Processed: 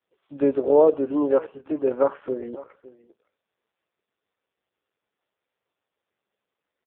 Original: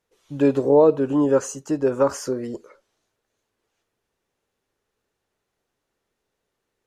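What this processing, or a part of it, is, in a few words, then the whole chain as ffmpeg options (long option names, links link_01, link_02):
satellite phone: -af "highpass=310,lowpass=3400,aecho=1:1:558:0.106" -ar 8000 -c:a libopencore_amrnb -b:a 4750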